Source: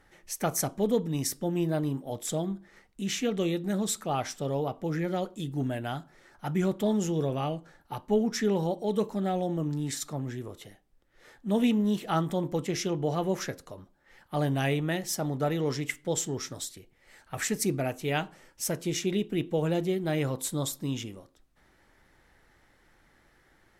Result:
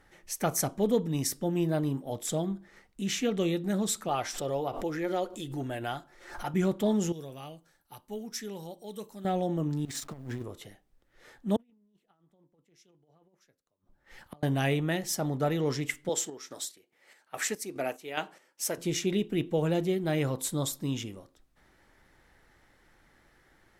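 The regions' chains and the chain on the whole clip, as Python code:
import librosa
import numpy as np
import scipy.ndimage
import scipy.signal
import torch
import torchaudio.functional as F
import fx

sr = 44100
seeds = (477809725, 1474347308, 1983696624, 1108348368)

y = fx.chain(x, sr, fx.peak_eq(hz=170.0, db=-13.5, octaves=0.7),
    fx.comb(ms=5.7, depth=0.3),
    fx.pre_swell(db_per_s=87.0), at=(4.08, 6.54))
y = fx.chain(y, sr, fx.pre_emphasis(coefficient=0.8),
    fx.notch(hz=7000.0, q=17.0), at=(7.12, 9.25))
y = fx.chain(y, sr, fx.over_compress(threshold_db=-37.0, ratio=-0.5),
    fx.quant_float(bits=4),
    fx.backlash(play_db=-41.5), at=(9.85, 10.44))
y = fx.chain(y, sr, fx.over_compress(threshold_db=-29.0, ratio=-0.5),
    fx.gate_flip(shuts_db=-33.0, range_db=-33),
    fx.band_widen(depth_pct=70), at=(11.56, 14.43))
y = fx.chain(y, sr, fx.highpass(hz=330.0, slope=12),
    fx.chopper(hz=2.4, depth_pct=60, duty_pct=50), at=(16.09, 18.78))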